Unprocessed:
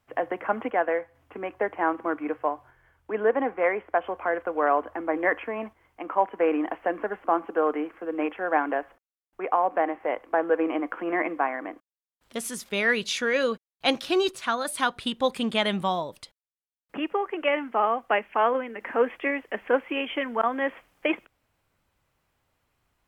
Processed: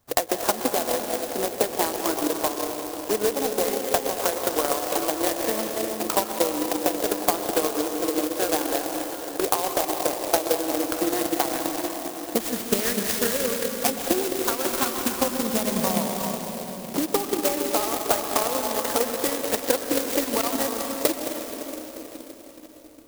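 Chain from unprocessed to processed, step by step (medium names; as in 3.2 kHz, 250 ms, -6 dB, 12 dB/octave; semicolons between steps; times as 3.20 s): compression 6:1, threshold -30 dBFS, peak gain reduction 13.5 dB; reverberation RT60 4.5 s, pre-delay 115 ms, DRR -0.5 dB; transient shaper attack +8 dB, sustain -2 dB; sampling jitter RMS 0.13 ms; trim +5 dB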